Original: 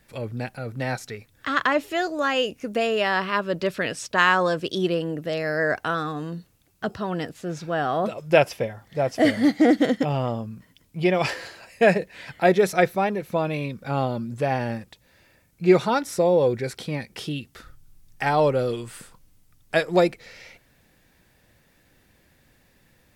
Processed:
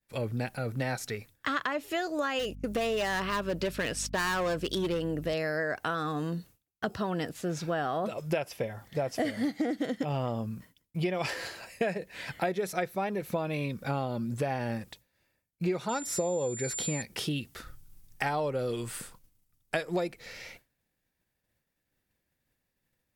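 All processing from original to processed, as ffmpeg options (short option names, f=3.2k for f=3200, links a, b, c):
-filter_complex "[0:a]asettb=1/sr,asplit=3[a][b][c];[a]atrim=end=2.394[d];[b]atrim=start=2.39:end=5.34,asetpts=PTS-STARTPTS,afade=t=in:d=0.004:c=qsin,afade=t=out:st=2.946:d=0.004:c=qsin,agate=range=-30dB:threshold=-42dB:ratio=16:release=100:detection=peak,volume=20.5dB,asoftclip=hard,volume=-20.5dB,aeval=exprs='val(0)+0.00794*(sin(2*PI*50*n/s)+sin(2*PI*2*50*n/s)/2+sin(2*PI*3*50*n/s)/3+sin(2*PI*4*50*n/s)/4+sin(2*PI*5*50*n/s)/5)':c=same[e];[c]atrim=start=5.336[f];[d][e]acrossfade=d=0.004:c1=hsin:c2=qsin[g];[g][f]acrossfade=d=0.004:c1=qsin:c2=hsin,asettb=1/sr,asplit=3[h][i][j];[h]atrim=end=15.894[k];[i]atrim=start=15.89:end=17.02,asetpts=PTS-STARTPTS,afade=t=in:d=0.004:c=qsin,afade=t=out:st=1.126:d=0.004:c=qsin,highshelf=f=11k:g=-4.5,aeval=exprs='val(0)+0.02*sin(2*PI*7200*n/s)':c=same[l];[j]atrim=start=17.016[m];[k][l]acrossfade=d=0.004:c1=hsin:c2=qsin[n];[n][m]acrossfade=d=0.004:c1=qsin:c2=hsin,agate=range=-33dB:threshold=-46dB:ratio=3:detection=peak,highshelf=f=9.2k:g=7,acompressor=threshold=-27dB:ratio=10"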